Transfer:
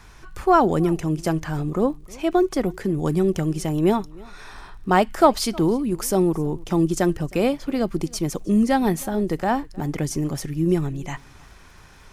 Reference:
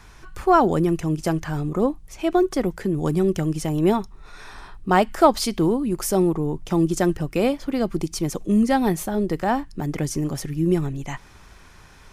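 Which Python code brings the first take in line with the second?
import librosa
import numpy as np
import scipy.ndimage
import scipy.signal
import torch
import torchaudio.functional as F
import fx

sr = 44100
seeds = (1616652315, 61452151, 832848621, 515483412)

y = fx.fix_declick_ar(x, sr, threshold=6.5)
y = fx.fix_echo_inverse(y, sr, delay_ms=313, level_db=-24.0)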